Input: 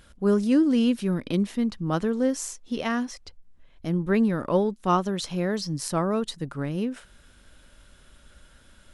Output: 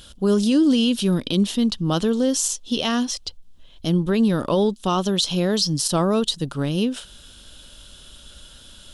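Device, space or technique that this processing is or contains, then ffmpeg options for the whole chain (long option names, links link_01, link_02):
over-bright horn tweeter: -af "highshelf=frequency=2600:width_type=q:width=3:gain=6.5,alimiter=limit=-17dB:level=0:latency=1:release=40,volume=6dB"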